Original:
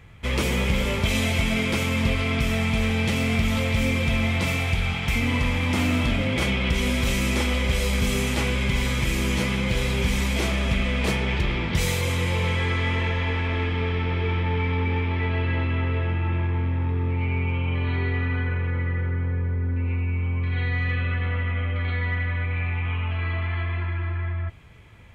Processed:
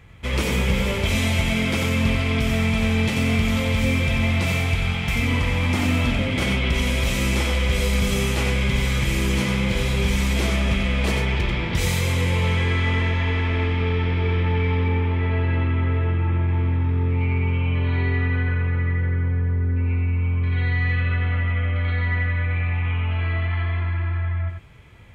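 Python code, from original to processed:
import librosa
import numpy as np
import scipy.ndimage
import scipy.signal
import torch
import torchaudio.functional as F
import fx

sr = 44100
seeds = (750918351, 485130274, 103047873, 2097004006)

y = fx.high_shelf(x, sr, hz=3800.0, db=-9.0, at=(14.88, 16.48))
y = y + 10.0 ** (-5.0 / 20.0) * np.pad(y, (int(91 * sr / 1000.0), 0))[:len(y)]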